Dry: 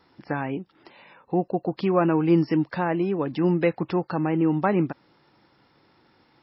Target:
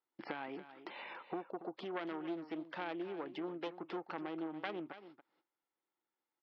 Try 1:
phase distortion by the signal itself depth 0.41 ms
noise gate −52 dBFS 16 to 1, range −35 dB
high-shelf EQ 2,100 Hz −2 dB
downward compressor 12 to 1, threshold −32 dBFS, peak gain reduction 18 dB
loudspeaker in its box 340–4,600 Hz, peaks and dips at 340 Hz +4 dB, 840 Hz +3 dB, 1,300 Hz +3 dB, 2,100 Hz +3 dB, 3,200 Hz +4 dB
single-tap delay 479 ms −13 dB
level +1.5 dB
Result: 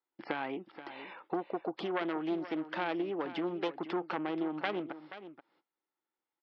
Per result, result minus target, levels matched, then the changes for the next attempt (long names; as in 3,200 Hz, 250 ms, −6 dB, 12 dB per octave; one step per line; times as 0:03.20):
echo 196 ms late; downward compressor: peak gain reduction −7.5 dB
change: single-tap delay 283 ms −13 dB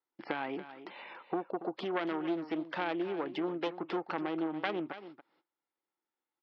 downward compressor: peak gain reduction −7.5 dB
change: downward compressor 12 to 1, threshold −40 dBFS, peak gain reduction 25 dB